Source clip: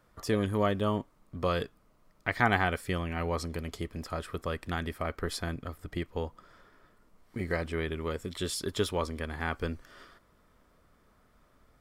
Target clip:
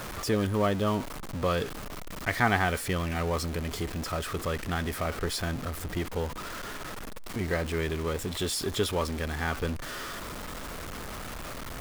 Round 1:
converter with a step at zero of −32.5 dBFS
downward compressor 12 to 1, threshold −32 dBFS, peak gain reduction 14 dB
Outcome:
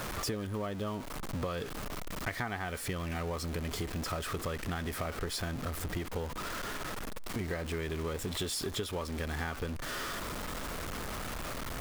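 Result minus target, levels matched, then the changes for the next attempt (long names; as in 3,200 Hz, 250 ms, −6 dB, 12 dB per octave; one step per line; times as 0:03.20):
downward compressor: peak gain reduction +14 dB
remove: downward compressor 12 to 1, threshold −32 dBFS, peak gain reduction 14 dB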